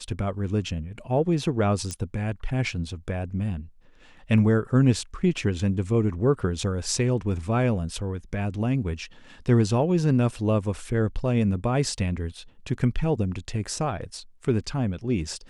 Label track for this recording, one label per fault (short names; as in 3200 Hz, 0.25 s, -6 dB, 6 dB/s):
1.910000	1.910000	pop -19 dBFS